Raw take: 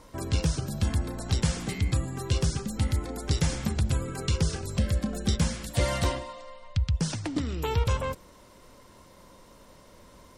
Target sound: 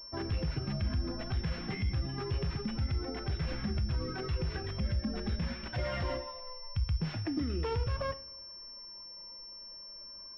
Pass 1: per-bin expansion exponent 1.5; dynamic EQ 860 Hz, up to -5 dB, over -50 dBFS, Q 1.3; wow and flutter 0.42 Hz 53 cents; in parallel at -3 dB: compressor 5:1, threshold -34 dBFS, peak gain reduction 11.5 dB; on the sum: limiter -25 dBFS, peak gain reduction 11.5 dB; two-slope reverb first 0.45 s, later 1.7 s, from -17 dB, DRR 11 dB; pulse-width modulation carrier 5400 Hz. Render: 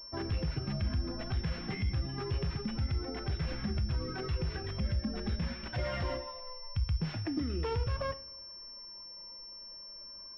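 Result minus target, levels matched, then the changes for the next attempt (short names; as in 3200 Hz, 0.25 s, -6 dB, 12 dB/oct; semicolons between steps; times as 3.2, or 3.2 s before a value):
compressor: peak gain reduction +5 dB
change: compressor 5:1, threshold -28 dBFS, peak gain reduction 7 dB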